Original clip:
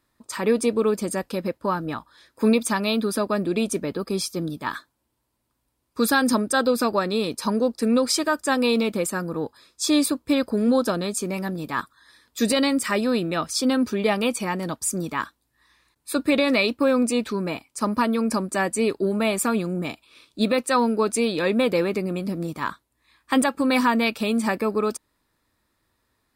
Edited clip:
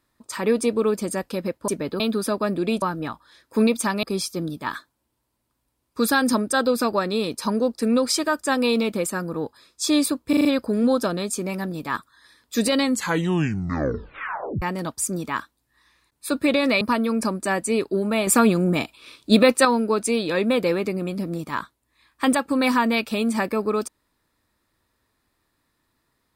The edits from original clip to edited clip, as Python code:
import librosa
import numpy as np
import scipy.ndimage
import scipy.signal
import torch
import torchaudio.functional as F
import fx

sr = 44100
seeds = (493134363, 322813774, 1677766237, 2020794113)

y = fx.edit(x, sr, fx.swap(start_s=1.68, length_s=1.21, other_s=3.71, other_length_s=0.32),
    fx.stutter(start_s=10.29, slice_s=0.04, count=5),
    fx.tape_stop(start_s=12.64, length_s=1.82),
    fx.cut(start_s=16.65, length_s=1.25),
    fx.clip_gain(start_s=19.36, length_s=1.38, db=6.5), tone=tone)